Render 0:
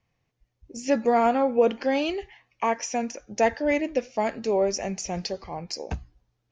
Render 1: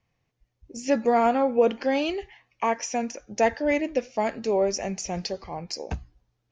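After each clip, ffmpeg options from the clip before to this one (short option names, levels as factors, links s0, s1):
-af anull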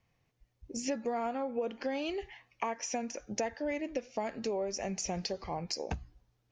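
-af "acompressor=threshold=0.0251:ratio=6"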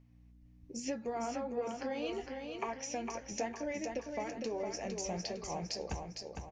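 -filter_complex "[0:a]aeval=exprs='val(0)+0.002*(sin(2*PI*60*n/s)+sin(2*PI*2*60*n/s)/2+sin(2*PI*3*60*n/s)/3+sin(2*PI*4*60*n/s)/4+sin(2*PI*5*60*n/s)/5)':c=same,flanger=delay=7.4:depth=6.3:regen=-61:speed=1.1:shape=triangular,asplit=2[s0][s1];[s1]aecho=0:1:457|914|1371|1828|2285|2742:0.562|0.253|0.114|0.0512|0.0231|0.0104[s2];[s0][s2]amix=inputs=2:normalize=0"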